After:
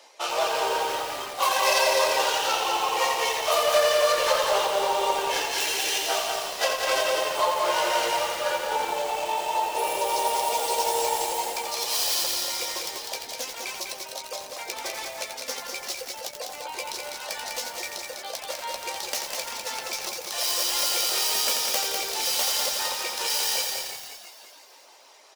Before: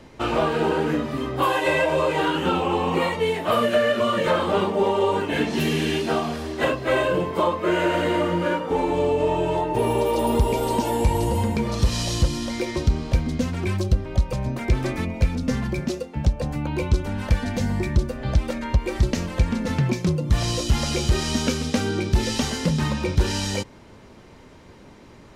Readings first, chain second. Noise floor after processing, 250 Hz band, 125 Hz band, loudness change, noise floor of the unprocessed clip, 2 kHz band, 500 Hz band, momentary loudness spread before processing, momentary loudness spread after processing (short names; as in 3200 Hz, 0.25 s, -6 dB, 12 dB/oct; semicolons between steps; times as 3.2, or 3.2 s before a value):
-45 dBFS, -21.5 dB, under -30 dB, -2.0 dB, -47 dBFS, -0.5 dB, -4.5 dB, 4 LU, 11 LU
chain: tracing distortion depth 0.16 ms; bell 1500 Hz -10.5 dB 1.9 oct; doubler 15 ms -7.5 dB; frequency-shifting echo 0.342 s, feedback 43%, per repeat -88 Hz, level -10 dB; reverb removal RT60 0.64 s; HPF 680 Hz 24 dB/oct; bell 5500 Hz +4 dB 0.61 oct; on a send: echo 0.2 s -4.5 dB; on the sum: lo-fi delay 86 ms, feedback 80%, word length 7-bit, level -5 dB; gain +5.5 dB